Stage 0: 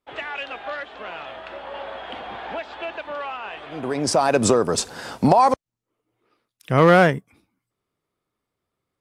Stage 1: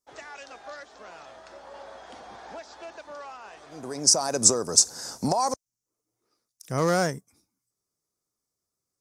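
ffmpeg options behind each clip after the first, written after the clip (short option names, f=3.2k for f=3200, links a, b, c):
-af "highshelf=f=4.2k:t=q:w=3:g=12.5,volume=-9.5dB"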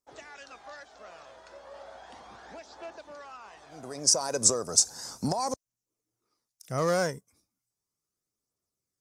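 -af "aphaser=in_gain=1:out_gain=1:delay=2.1:decay=0.35:speed=0.35:type=triangular,volume=-4dB"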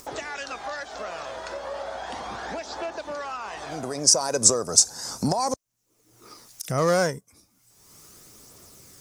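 -af "acompressor=mode=upward:threshold=-29dB:ratio=2.5,volume=5dB"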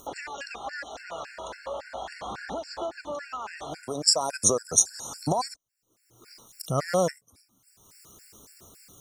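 -af "afftfilt=real='re*gt(sin(2*PI*3.6*pts/sr)*(1-2*mod(floor(b*sr/1024/1400),2)),0)':imag='im*gt(sin(2*PI*3.6*pts/sr)*(1-2*mod(floor(b*sr/1024/1400),2)),0)':win_size=1024:overlap=0.75"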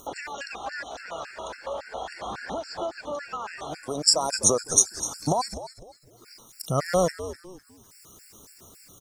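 -filter_complex "[0:a]asplit=4[a][b][c][d];[b]adelay=252,afreqshift=-95,volume=-13dB[e];[c]adelay=504,afreqshift=-190,volume=-23.2dB[f];[d]adelay=756,afreqshift=-285,volume=-33.3dB[g];[a][e][f][g]amix=inputs=4:normalize=0,volume=1.5dB"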